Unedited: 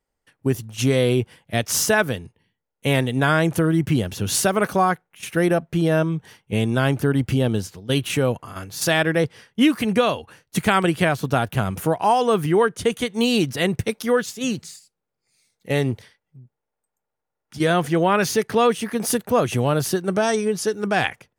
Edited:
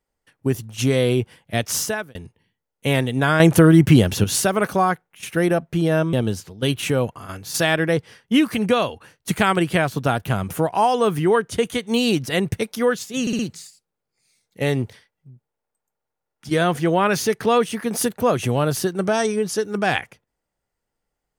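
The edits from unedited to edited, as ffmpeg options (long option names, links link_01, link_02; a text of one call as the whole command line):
ffmpeg -i in.wav -filter_complex "[0:a]asplit=8[link_01][link_02][link_03][link_04][link_05][link_06][link_07][link_08];[link_01]atrim=end=2.15,asetpts=PTS-STARTPTS,afade=type=out:start_time=1.67:duration=0.48[link_09];[link_02]atrim=start=2.15:end=3.402,asetpts=PTS-STARTPTS,afade=type=in:duration=0.004:curve=hsin[link_10];[link_03]atrim=start=3.398:end=4.242,asetpts=PTS-STARTPTS,volume=7.5dB[link_11];[link_04]atrim=start=4.238:end=6.132[link_12];[link_05]atrim=start=7.398:end=14.542[link_13];[link_06]atrim=start=14.478:end=14.542[link_14];[link_07]atrim=start=14.478:end=14.542[link_15];[link_08]atrim=start=14.478[link_16];[link_09][link_10]concat=n=2:v=0:a=1[link_17];[link_17][link_11]acrossfade=duration=0.004:curve1=hsin:curve2=hsin[link_18];[link_18][link_12]acrossfade=duration=0.004:curve1=hsin:curve2=hsin[link_19];[link_19][link_13]acrossfade=duration=0.004:curve1=hsin:curve2=hsin[link_20];[link_20][link_14]acrossfade=duration=0.004:curve1=hsin:curve2=hsin[link_21];[link_21][link_15]acrossfade=duration=0.004:curve1=hsin:curve2=hsin[link_22];[link_22][link_16]acrossfade=duration=0.004:curve1=hsin:curve2=hsin" out.wav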